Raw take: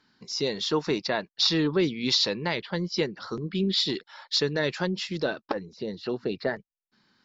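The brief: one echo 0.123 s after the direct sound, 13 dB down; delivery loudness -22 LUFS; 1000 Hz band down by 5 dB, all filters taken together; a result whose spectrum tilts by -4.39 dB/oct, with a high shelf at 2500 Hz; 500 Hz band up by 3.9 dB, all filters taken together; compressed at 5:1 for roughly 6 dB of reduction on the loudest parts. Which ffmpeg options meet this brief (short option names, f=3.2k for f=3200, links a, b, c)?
-af "equalizer=f=500:t=o:g=7,equalizer=f=1k:t=o:g=-9,highshelf=f=2.5k:g=-7.5,acompressor=threshold=-24dB:ratio=5,aecho=1:1:123:0.224,volume=8.5dB"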